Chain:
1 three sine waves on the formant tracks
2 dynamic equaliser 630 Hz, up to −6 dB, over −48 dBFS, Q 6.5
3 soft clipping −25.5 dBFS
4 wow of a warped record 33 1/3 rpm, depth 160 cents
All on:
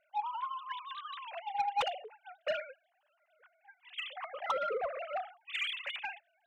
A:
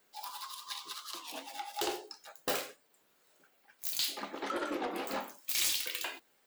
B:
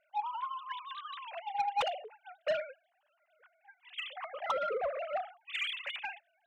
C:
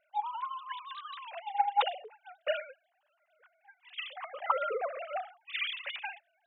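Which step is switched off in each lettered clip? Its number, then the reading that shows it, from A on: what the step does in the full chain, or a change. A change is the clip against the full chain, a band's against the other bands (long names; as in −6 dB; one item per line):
1, 8 kHz band +26.0 dB
2, 500 Hz band +2.0 dB
3, distortion level −11 dB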